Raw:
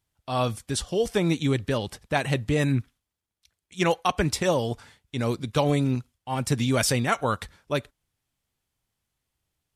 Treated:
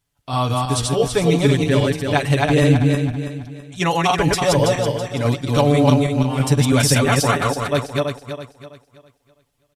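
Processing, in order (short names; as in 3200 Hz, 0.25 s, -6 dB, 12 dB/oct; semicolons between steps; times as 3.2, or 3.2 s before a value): regenerating reverse delay 0.164 s, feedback 59%, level -1 dB; comb 7 ms; gain +3 dB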